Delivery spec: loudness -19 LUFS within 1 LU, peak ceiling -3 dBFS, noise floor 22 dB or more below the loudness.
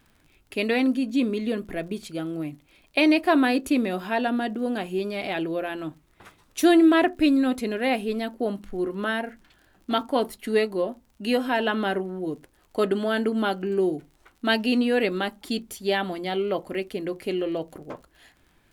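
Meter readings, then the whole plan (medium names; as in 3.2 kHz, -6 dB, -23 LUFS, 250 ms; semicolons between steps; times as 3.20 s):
tick rate 36 per s; loudness -25.0 LUFS; peak level -7.5 dBFS; loudness target -19.0 LUFS
-> de-click; trim +6 dB; peak limiter -3 dBFS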